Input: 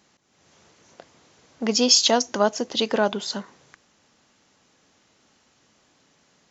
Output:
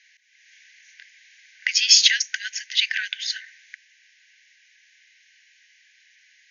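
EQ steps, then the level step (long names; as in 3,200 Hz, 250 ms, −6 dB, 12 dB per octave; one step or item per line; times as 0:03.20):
linear-phase brick-wall band-pass 1,500–6,900 Hz
parametric band 2,100 Hz +13 dB 0.9 octaves
+1.5 dB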